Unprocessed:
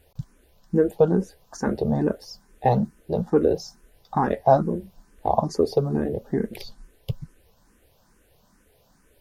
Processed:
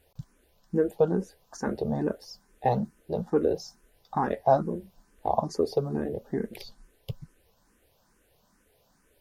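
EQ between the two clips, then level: low shelf 210 Hz -4.5 dB; -4.0 dB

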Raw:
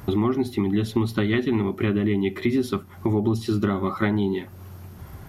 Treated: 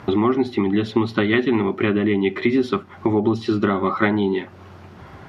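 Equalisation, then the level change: HPF 330 Hz 6 dB/oct; LPF 3500 Hz 12 dB/oct; +7.5 dB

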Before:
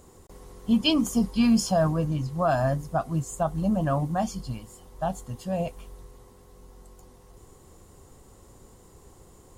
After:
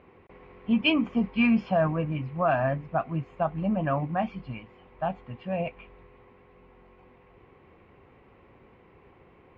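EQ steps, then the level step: HPF 160 Hz 6 dB/oct; synth low-pass 2400 Hz, resonance Q 5.6; air absorption 310 m; 0.0 dB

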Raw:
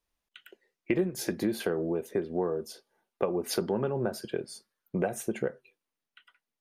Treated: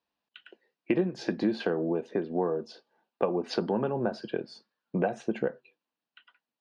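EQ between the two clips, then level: speaker cabinet 190–4200 Hz, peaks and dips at 390 Hz -6 dB, 570 Hz -3 dB, 1300 Hz -5 dB, 2100 Hz -9 dB, 3400 Hz -5 dB; +5.0 dB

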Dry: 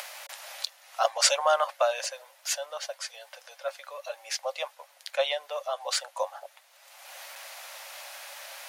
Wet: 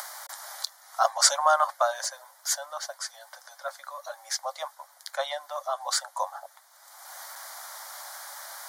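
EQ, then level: fixed phaser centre 1100 Hz, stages 4; +5.0 dB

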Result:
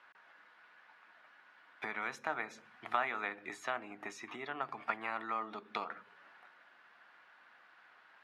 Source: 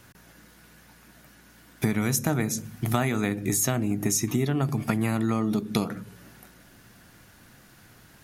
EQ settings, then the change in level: Chebyshev band-pass 1000–7300 Hz, order 2; air absorption 470 m; +1.0 dB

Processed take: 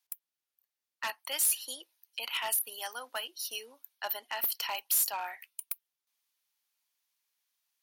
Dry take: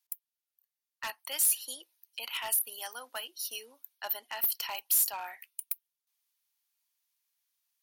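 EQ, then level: low shelf 98 Hz -12 dB; high shelf 7000 Hz -6 dB; +3.0 dB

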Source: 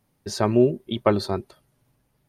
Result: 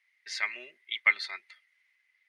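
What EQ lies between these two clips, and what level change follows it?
ladder band-pass 2100 Hz, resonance 90%; high shelf 2000 Hz +8.5 dB; +6.5 dB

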